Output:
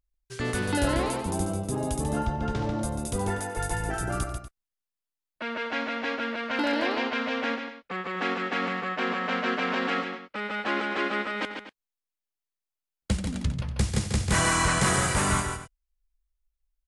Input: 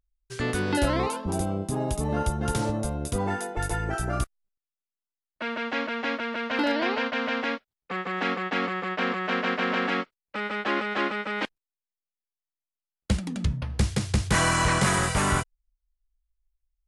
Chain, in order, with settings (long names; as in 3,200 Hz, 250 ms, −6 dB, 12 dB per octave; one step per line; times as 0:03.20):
0:02.21–0:02.79: high-frequency loss of the air 160 metres
multi-tap delay 91/142/242 ms −16.5/−6.5/−14.5 dB
dynamic equaliser 8,400 Hz, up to +4 dB, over −46 dBFS, Q 1.3
level −2 dB